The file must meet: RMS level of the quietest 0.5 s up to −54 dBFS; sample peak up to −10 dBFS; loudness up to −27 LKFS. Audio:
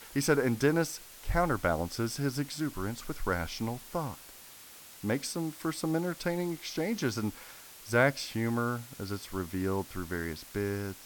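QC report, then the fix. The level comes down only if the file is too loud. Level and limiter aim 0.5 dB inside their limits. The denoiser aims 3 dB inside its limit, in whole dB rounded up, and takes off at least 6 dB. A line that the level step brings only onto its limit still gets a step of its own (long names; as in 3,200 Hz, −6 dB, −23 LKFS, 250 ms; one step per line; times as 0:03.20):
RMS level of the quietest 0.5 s −51 dBFS: out of spec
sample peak −12.0 dBFS: in spec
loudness −32.5 LKFS: in spec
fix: broadband denoise 6 dB, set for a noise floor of −51 dBFS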